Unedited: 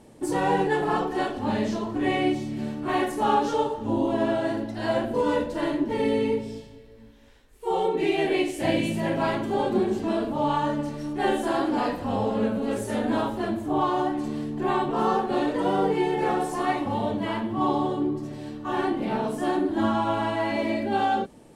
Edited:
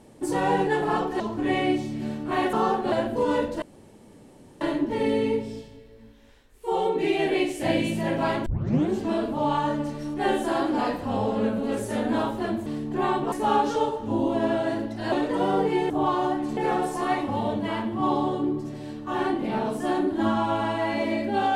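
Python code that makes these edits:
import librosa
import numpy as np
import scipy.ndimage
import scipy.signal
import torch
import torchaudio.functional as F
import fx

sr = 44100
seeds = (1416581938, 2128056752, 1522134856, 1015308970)

y = fx.edit(x, sr, fx.cut(start_s=1.2, length_s=0.57),
    fx.swap(start_s=3.1, length_s=1.8, other_s=14.98, other_length_s=0.39),
    fx.insert_room_tone(at_s=5.6, length_s=0.99),
    fx.tape_start(start_s=9.45, length_s=0.44),
    fx.move(start_s=13.65, length_s=0.67, to_s=16.15), tone=tone)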